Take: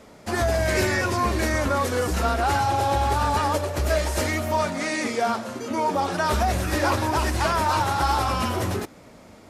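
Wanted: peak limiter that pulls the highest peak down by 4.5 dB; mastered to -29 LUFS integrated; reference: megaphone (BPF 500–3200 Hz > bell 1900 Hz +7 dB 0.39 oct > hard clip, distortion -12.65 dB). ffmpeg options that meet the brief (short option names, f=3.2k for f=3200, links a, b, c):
-af "alimiter=limit=-15.5dB:level=0:latency=1,highpass=500,lowpass=3.2k,equalizer=f=1.9k:t=o:w=0.39:g=7,asoftclip=type=hard:threshold=-24dB,volume=-1dB"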